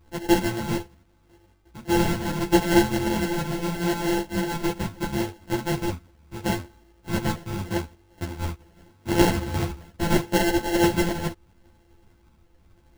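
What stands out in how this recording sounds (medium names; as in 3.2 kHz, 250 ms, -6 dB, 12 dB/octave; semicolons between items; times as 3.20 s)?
a buzz of ramps at a fixed pitch in blocks of 128 samples; phasing stages 12, 0.78 Hz, lowest notch 490–1100 Hz; aliases and images of a low sample rate 1.2 kHz, jitter 0%; a shimmering, thickened sound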